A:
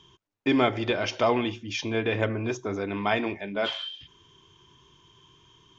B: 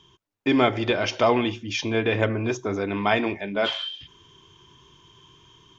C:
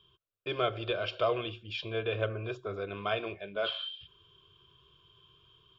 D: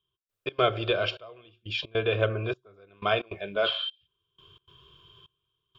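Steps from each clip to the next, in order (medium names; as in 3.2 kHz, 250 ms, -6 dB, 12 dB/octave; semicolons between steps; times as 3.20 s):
level rider gain up to 4 dB
static phaser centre 1.3 kHz, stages 8; trim -7 dB
trance gate "...xx.xxxxxx.." 154 bpm -24 dB; trim +6.5 dB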